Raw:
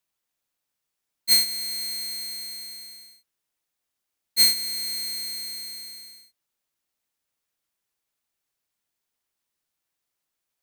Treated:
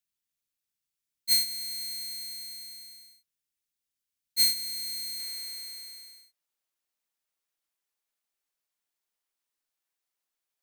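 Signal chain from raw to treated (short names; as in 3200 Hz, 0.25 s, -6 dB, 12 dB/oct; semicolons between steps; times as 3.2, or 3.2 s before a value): bell 720 Hz -12 dB 2.2 oct, from 5.2 s 98 Hz; gain -4.5 dB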